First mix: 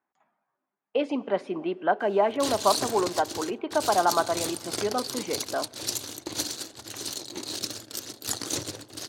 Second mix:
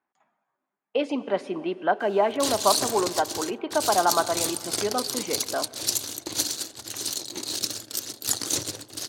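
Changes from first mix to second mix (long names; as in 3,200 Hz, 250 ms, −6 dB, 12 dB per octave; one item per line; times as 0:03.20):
speech: send +6.5 dB
master: add high-shelf EQ 4,100 Hz +7 dB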